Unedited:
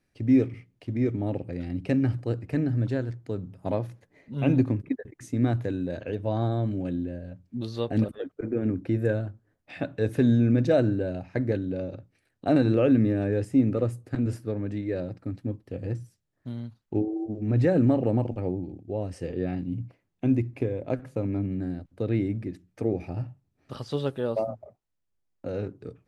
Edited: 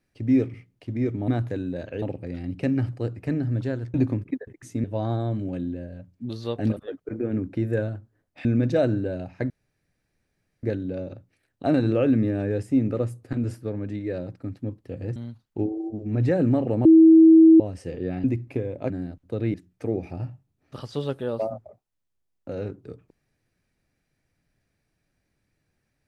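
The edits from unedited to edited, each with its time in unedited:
3.20–4.52 s: delete
5.42–6.16 s: move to 1.28 s
9.77–10.40 s: delete
11.45 s: insert room tone 1.13 s
15.98–16.52 s: delete
18.21–18.96 s: bleep 323 Hz -8.5 dBFS
19.60–20.30 s: delete
20.96–21.58 s: delete
22.22–22.51 s: delete

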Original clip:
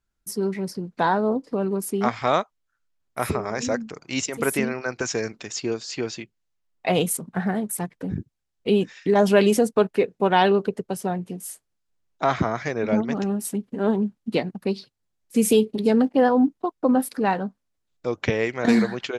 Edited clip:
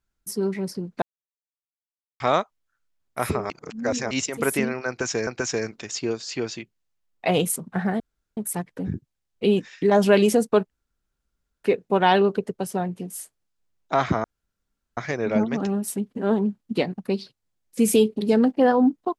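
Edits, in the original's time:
1.02–2.20 s: mute
3.50–4.11 s: reverse
4.88–5.27 s: loop, 2 plays
7.61 s: insert room tone 0.37 s
9.94 s: insert room tone 0.94 s
12.54 s: insert room tone 0.73 s

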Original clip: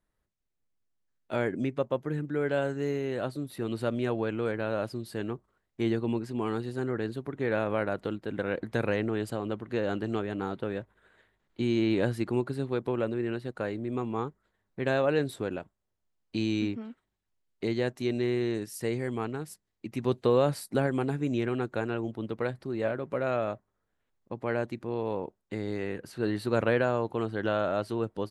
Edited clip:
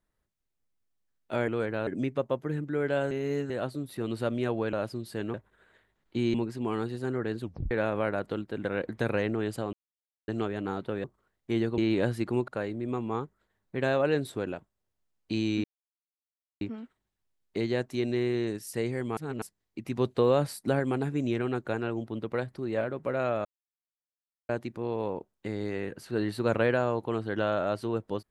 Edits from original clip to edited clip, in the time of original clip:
2.72–3.11 s: reverse
4.34–4.73 s: move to 1.48 s
5.34–6.08 s: swap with 10.78–11.78 s
7.15 s: tape stop 0.30 s
9.47–10.02 s: mute
12.48–13.52 s: delete
16.68 s: insert silence 0.97 s
19.24–19.49 s: reverse
23.52–24.56 s: mute

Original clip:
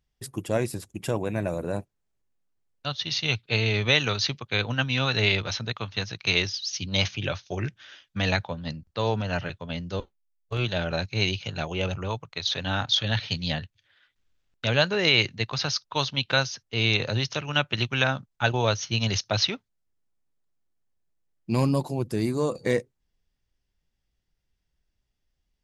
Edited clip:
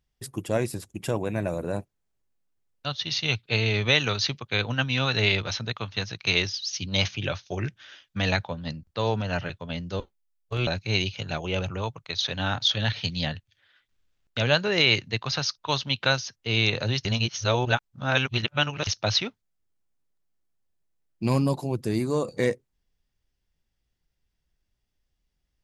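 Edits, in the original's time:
10.67–10.94 s: delete
17.32–19.14 s: reverse

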